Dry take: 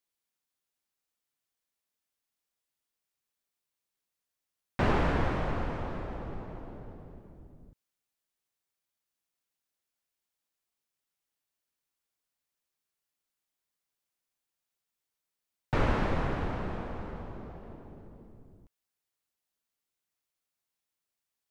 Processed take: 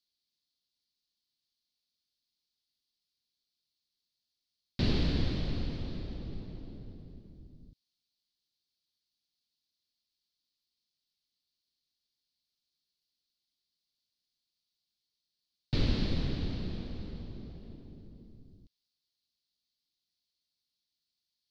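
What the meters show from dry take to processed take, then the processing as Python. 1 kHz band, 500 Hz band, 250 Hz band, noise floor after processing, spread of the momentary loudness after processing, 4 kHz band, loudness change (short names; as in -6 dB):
-16.5 dB, -8.0 dB, -0.5 dB, under -85 dBFS, 21 LU, +6.5 dB, -2.5 dB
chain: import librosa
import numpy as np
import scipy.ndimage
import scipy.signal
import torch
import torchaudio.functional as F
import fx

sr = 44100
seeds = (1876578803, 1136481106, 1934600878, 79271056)

y = fx.curve_eq(x, sr, hz=(270.0, 900.0, 1400.0, 2600.0, 4400.0, 7500.0), db=(0, -18, -16, -3, 14, -9))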